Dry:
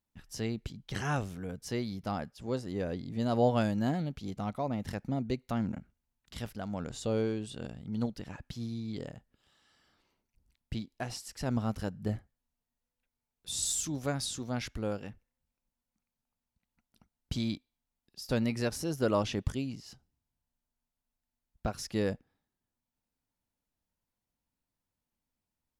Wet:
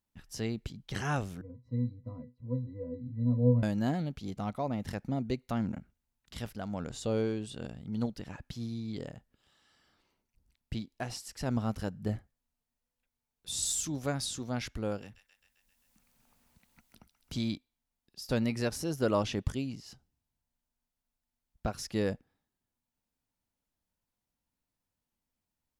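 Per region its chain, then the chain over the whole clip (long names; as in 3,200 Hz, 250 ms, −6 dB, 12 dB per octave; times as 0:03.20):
0:01.41–0:03.63: spectral tilt −3 dB per octave + resonances in every octave B, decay 0.19 s
0:15.02–0:17.33: high-shelf EQ 3,300 Hz +9.5 dB + delay with a high-pass on its return 132 ms, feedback 49%, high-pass 1,500 Hz, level −8.5 dB + multiband upward and downward compressor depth 70%
whole clip: no processing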